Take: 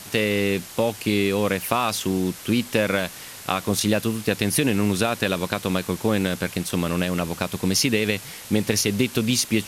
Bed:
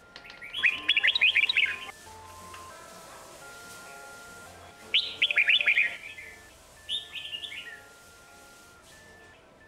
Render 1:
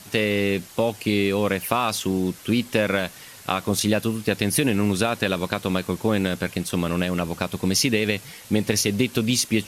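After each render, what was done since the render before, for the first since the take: noise reduction 6 dB, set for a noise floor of -40 dBFS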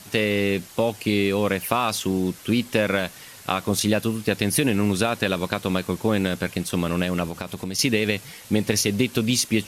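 7.28–7.79 s: compression, threshold -25 dBFS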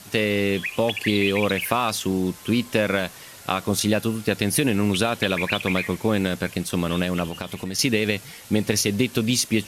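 add bed -6 dB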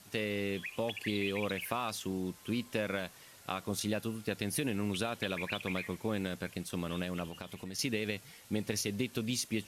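trim -13 dB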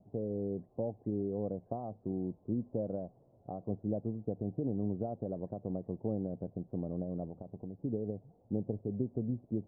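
elliptic low-pass 720 Hz, stop band 70 dB; peaking EQ 120 Hz +4.5 dB 0.4 oct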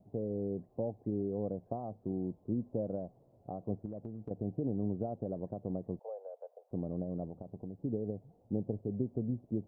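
3.85–4.31 s: compression, threshold -38 dBFS; 5.99–6.71 s: steep high-pass 480 Hz 72 dB/octave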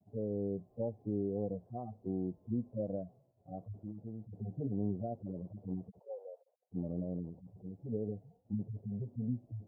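harmonic-percussive separation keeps harmonic; expander -59 dBFS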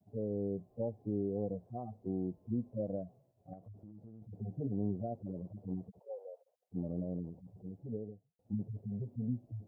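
3.53–4.22 s: compression 4:1, threshold -49 dBFS; 7.69–8.39 s: studio fade out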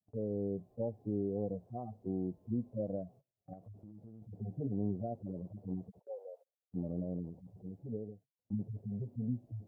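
gate -58 dBFS, range -22 dB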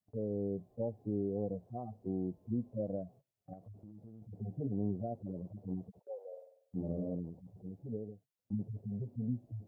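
6.27–7.15 s: flutter echo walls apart 8.3 m, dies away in 0.64 s

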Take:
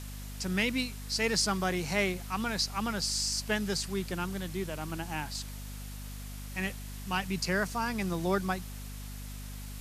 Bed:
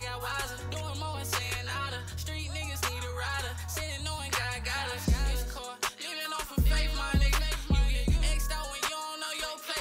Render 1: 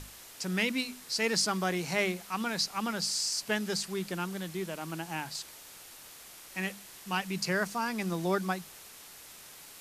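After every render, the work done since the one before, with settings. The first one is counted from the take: hum notches 50/100/150/200/250 Hz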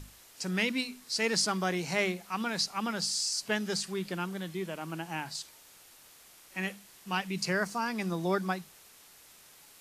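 noise print and reduce 6 dB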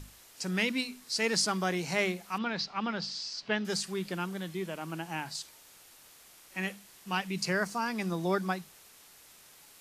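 2.38–3.65 s: low-pass 4.5 kHz 24 dB/octave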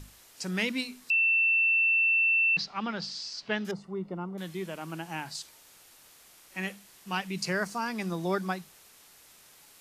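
1.10–2.57 s: bleep 2.68 kHz -21 dBFS; 3.71–4.38 s: Savitzky-Golay filter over 65 samples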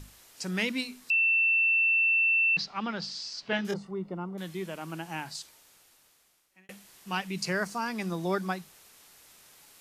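3.50–3.91 s: doubling 25 ms -3 dB; 5.22–6.69 s: fade out linear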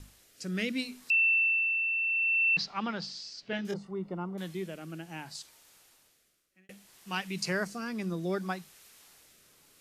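rotary cabinet horn 0.65 Hz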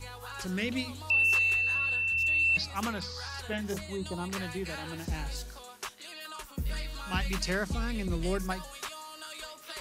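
add bed -8 dB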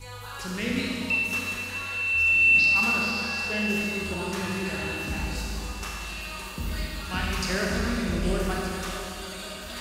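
echo whose repeats swap between lows and highs 613 ms, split 940 Hz, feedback 74%, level -12 dB; Schroeder reverb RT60 2.6 s, combs from 26 ms, DRR -3.5 dB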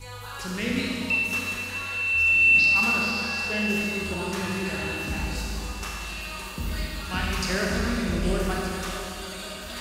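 trim +1 dB

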